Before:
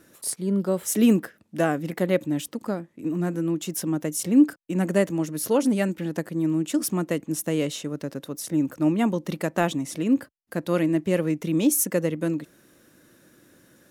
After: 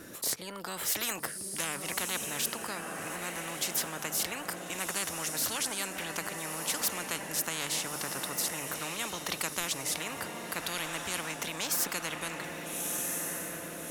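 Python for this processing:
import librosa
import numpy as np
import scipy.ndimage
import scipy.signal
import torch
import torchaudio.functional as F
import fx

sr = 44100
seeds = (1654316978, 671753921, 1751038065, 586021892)

y = fx.hum_notches(x, sr, base_hz=50, count=3)
y = fx.echo_diffused(y, sr, ms=1282, feedback_pct=46, wet_db=-13.0)
y = fx.spectral_comp(y, sr, ratio=10.0)
y = y * 10.0 ** (-6.5 / 20.0)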